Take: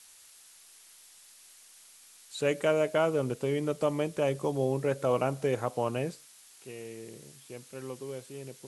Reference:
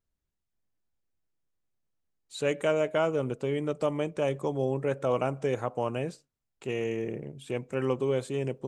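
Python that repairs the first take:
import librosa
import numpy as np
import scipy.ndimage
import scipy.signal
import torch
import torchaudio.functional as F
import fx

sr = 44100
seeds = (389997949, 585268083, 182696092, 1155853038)

y = fx.noise_reduce(x, sr, print_start_s=0.39, print_end_s=0.89, reduce_db=23.0)
y = fx.fix_level(y, sr, at_s=6.52, step_db=12.0)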